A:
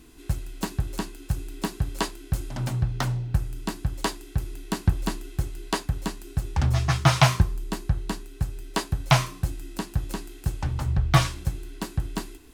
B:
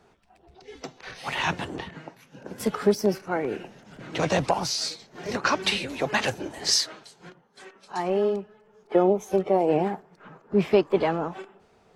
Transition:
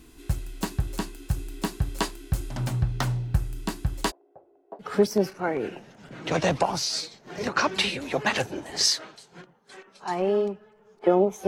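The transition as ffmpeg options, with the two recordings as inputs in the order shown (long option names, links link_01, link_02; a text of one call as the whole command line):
ffmpeg -i cue0.wav -i cue1.wav -filter_complex "[0:a]asplit=3[link_01][link_02][link_03];[link_01]afade=type=out:start_time=4.1:duration=0.02[link_04];[link_02]asuperpass=centerf=600:order=4:qfactor=2.1,afade=type=in:start_time=4.1:duration=0.02,afade=type=out:start_time=4.93:duration=0.02[link_05];[link_03]afade=type=in:start_time=4.93:duration=0.02[link_06];[link_04][link_05][link_06]amix=inputs=3:normalize=0,apad=whole_dur=11.47,atrim=end=11.47,atrim=end=4.93,asetpts=PTS-STARTPTS[link_07];[1:a]atrim=start=2.67:end=9.35,asetpts=PTS-STARTPTS[link_08];[link_07][link_08]acrossfade=duration=0.14:curve1=tri:curve2=tri" out.wav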